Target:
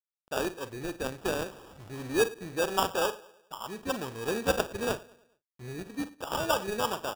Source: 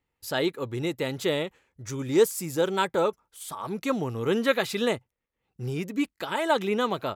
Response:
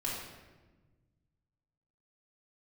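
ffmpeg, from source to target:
-filter_complex "[0:a]asettb=1/sr,asplit=3[link_01][link_02][link_03];[link_01]atrim=end=1.434[link_04];[link_02]atrim=start=1.43:end=2.92,asetpts=PTS-STARTPTS,afade=type=in:duration=0.004:curve=qsin,afade=type=out:start_time=1.486:duration=0.004:curve=qsin,aeval=exprs='val(0)+0.5*0.015*sgn(val(0))':channel_layout=same[link_05];[link_03]atrim=start=2.916[link_06];[link_04][link_05]acrossfade=duration=0.004:curve1=hsin:curve2=qsin[link_07];[link_07][link_06]acrossfade=duration=0.004:curve1=qsin:curve2=hsin,adynamicequalizer=threshold=0.00631:dfrequency=3100:dqfactor=1.9:tfrequency=3100:tqfactor=1.9:attack=5:release=100:ratio=0.375:range=2:mode=boostabove:tftype=bell,adynamicsmooth=sensitivity=1.5:basefreq=1000,lowshelf=frequency=430:gain=-12,asplit=2[link_08][link_09];[link_09]adelay=46,volume=-12.5dB[link_10];[link_08][link_10]amix=inputs=2:normalize=0,acrusher=bits=8:mix=0:aa=0.000001,asplit=2[link_11][link_12];[link_12]adelay=104,lowpass=frequency=2700:poles=1,volume=-20dB,asplit=2[link_13][link_14];[link_14]adelay=104,lowpass=frequency=2700:poles=1,volume=0.48,asplit=2[link_15][link_16];[link_16]adelay=104,lowpass=frequency=2700:poles=1,volume=0.48,asplit=2[link_17][link_18];[link_18]adelay=104,lowpass=frequency=2700:poles=1,volume=0.48[link_19];[link_13][link_15][link_17][link_19]amix=inputs=4:normalize=0[link_20];[link_11][link_20]amix=inputs=2:normalize=0,acrusher=samples=21:mix=1:aa=0.000001"

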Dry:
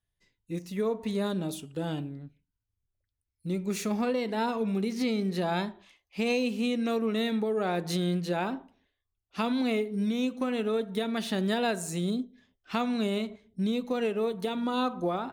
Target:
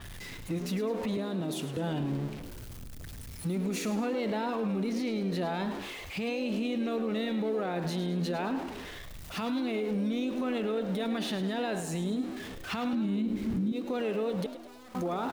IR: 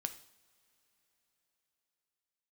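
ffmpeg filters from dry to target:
-filter_complex "[0:a]aeval=exprs='val(0)+0.5*0.0075*sgn(val(0))':channel_layout=same,asettb=1/sr,asplit=3[link_01][link_02][link_03];[link_01]atrim=end=1.174[link_04];[link_02]atrim=start=1.17:end=1.77,asetpts=PTS-STARTPTS,afade=type=in:duration=0.004:curve=qsin,afade=type=out:start_time=0.596:duration=0.004:curve=qsin,highpass=frequency=120:width=0.5412,highpass=frequency=120:width=1.3066[link_05];[link_03]atrim=start=1.766[link_06];[link_04][link_05]acrossfade=duration=0.004:curve1=hsin:curve2=qsin[link_07];[link_07][link_06]acrossfade=duration=0.004:curve1=qsin:curve2=hsin,asettb=1/sr,asplit=3[link_08][link_09][link_10];[link_08]atrim=end=12.934[link_11];[link_09]atrim=start=12.93:end=13.72,asetpts=PTS-STARTPTS,afade=type=in:duration=0.004:curve=qsin,afade=type=out:start_time=0.786:duration=0.004:curve=qsin,lowshelf=frequency=360:width_type=q:width=3:gain=9.5[link_12];[link_10]atrim=start=13.716[link_13];[link_11][link_12]acrossfade=duration=0.004:curve1=hsin:curve2=qsin[link_14];[link_14][link_13]acrossfade=duration=0.004:curve1=qsin:curve2=hsin,acompressor=threshold=-29dB:ratio=4,alimiter=level_in=7.5dB:limit=-24dB:level=0:latency=1:release=50,volume=-7.5dB,acontrast=52,asettb=1/sr,asplit=3[link_15][link_16][link_17];[link_15]atrim=end=14.464[link_18];[link_16]atrim=start=14.46:end=14.95,asetpts=PTS-STARTPTS,afade=type=in:duration=0.004:curve=qsin,afade=type=out:start_time=0.486:duration=0.004:curve=qsin,aeval=exprs='(tanh(398*val(0)+0.5)-tanh(0.5))/398':channel_layout=same[link_19];[link_17]atrim=start=14.946[link_20];[link_18][link_19]acrossfade=duration=0.004:curve1=hsin:curve2=qsin[link_21];[link_21][link_20]acrossfade=duration=0.004:curve1=qsin:curve2=hsin,asplit=6[link_22][link_23][link_24][link_25][link_26][link_27];[link_23]adelay=105,afreqshift=73,volume=-11dB[link_28];[link_24]adelay=210,afreqshift=146,volume=-17.7dB[link_29];[link_25]adelay=315,afreqshift=219,volume=-24.5dB[link_30];[link_26]adelay=420,afreqshift=292,volume=-31.2dB[link_31];[link_27]adelay=525,afreqshift=365,volume=-38dB[link_32];[link_22][link_28][link_29][link_30][link_31][link_32]amix=inputs=6:normalize=0,adynamicequalizer=threshold=0.00224:dfrequency=4800:dqfactor=0.7:tfrequency=4800:tqfactor=0.7:attack=5:release=100:ratio=0.375:range=3.5:mode=cutabove:tftype=highshelf"

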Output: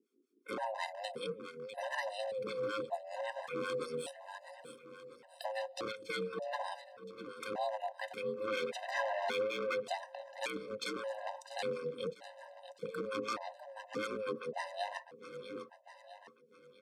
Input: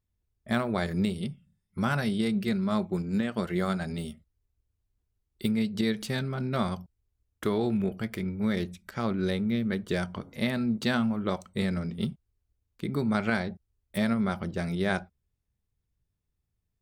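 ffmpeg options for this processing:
ffmpeg -i in.wav -filter_complex "[0:a]aeval=exprs='val(0)*sin(2*PI*320*n/s)':channel_layout=same,asettb=1/sr,asplit=3[link_01][link_02][link_03];[link_01]atrim=end=3.804[link_04];[link_02]atrim=start=3.8:end=5.45,asetpts=PTS-STARTPTS,afade=type=in:duration=0.004:curve=qsin,afade=type=out:start_time=1.646:duration=0.004:curve=qsin,highshelf=frequency=7200:gain=10.5[link_05];[link_03]atrim=start=5.446[link_06];[link_04][link_05]acrossfade=duration=0.004:curve1=hsin:curve2=qsin[link_07];[link_07][link_06]acrossfade=duration=0.004:curve1=qsin:curve2=hsin,acrossover=split=630[link_08][link_09];[link_08]aeval=exprs='val(0)*(1-1/2+1/2*cos(2*PI*5.3*n/s))':channel_layout=same[link_10];[link_09]aeval=exprs='val(0)*(1-1/2-1/2*cos(2*PI*5.3*n/s))':channel_layout=same[link_11];[link_10][link_11]amix=inputs=2:normalize=0,aeval=exprs='0.0398*(abs(mod(val(0)/0.0398+3,4)-2)-1)':channel_layout=same,lowpass=9400,asplit=2[link_12][link_13];[link_13]aecho=0:1:650|1300|1950|2600:0.158|0.0729|0.0335|0.0154[link_14];[link_12][link_14]amix=inputs=2:normalize=0,asettb=1/sr,asplit=3[link_15][link_16][link_17];[link_15]atrim=end=8.474[link_18];[link_16]atrim=start=8.47:end=9.8,asetpts=PTS-STARTPTS,afade=type=in:duration=0.004:curve=qsin,afade=type=out:start_time=1.326:duration=0.004:curve=qsin,asplit=2[link_19][link_20];[link_20]highpass=frequency=720:poles=1,volume=18dB,asoftclip=type=tanh:threshold=-27dB[link_21];[link_19][link_21]amix=inputs=2:normalize=0,lowpass=frequency=3200:poles=1,volume=-6dB[link_22];[link_17]atrim=start=9.796[link_23];[link_18][link_22]acrossfade=duration=0.004:curve1=hsin:curve2=qsin[link_24];[link_24][link_23]acrossfade=duration=0.004:curve1=qsin:curve2=hsin,alimiter=level_in=11dB:limit=-24dB:level=0:latency=1:release=453,volume=-11dB,highpass=frequency=240:width=0.5412,highpass=frequency=240:width=1.3066,afftfilt=real='re*gt(sin(2*PI*0.86*pts/sr)*(1-2*mod(floor(b*sr/1024/520),2)),0)':imag='im*gt(sin(2*PI*0.86*pts/sr)*(1-2*mod(floor(b*sr/1024/520),2)),0)':win_size=1024:overlap=0.75,volume=11dB" out.wav

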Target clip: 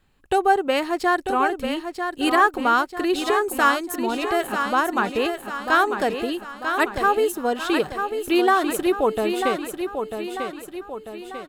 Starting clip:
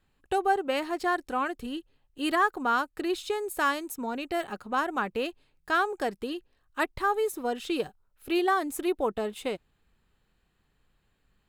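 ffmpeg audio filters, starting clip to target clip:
ffmpeg -i in.wav -af "aecho=1:1:944|1888|2832|3776|4720|5664:0.447|0.219|0.107|0.0526|0.0258|0.0126,volume=7dB" out.wav

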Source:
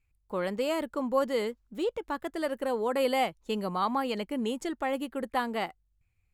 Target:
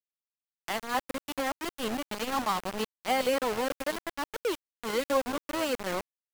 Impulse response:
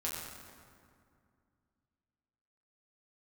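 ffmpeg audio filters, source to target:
-filter_complex "[0:a]areverse,asplit=2[link_01][link_02];[link_02]aecho=0:1:431:0.133[link_03];[link_01][link_03]amix=inputs=2:normalize=0,aeval=exprs='val(0)*gte(abs(val(0)),0.0355)':channel_layout=same,acompressor=mode=upward:threshold=-37dB:ratio=2.5"

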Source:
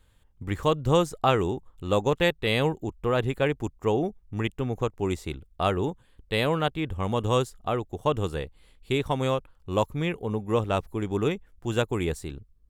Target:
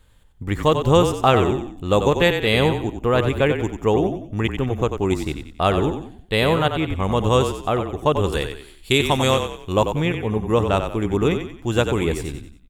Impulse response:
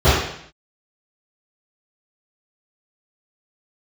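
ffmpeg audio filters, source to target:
-filter_complex "[0:a]asettb=1/sr,asplit=3[link_01][link_02][link_03];[link_01]atrim=end=8.324[link_04];[link_02]atrim=start=8.32:end=9.73,asetpts=PTS-STARTPTS,afade=type=in:duration=0.004:curve=qsin,afade=type=out:start_time=1.406:duration=0.004:curve=qsin,highshelf=frequency=2300:gain=11[link_05];[link_03]atrim=start=9.726[link_06];[link_04][link_05]acrossfade=duration=0.004:curve1=hsin:curve2=qsin[link_07];[link_07][link_06]acrossfade=duration=0.004:curve1=qsin:curve2=hsin,asplit=5[link_08][link_09][link_10][link_11][link_12];[link_09]adelay=92,afreqshift=-32,volume=-7.5dB[link_13];[link_10]adelay=184,afreqshift=-64,volume=-15.7dB[link_14];[link_11]adelay=276,afreqshift=-96,volume=-23.9dB[link_15];[link_12]adelay=368,afreqshift=-128,volume=-32dB[link_16];[link_08][link_13][link_14][link_15][link_16]amix=inputs=5:normalize=0,volume=6dB"

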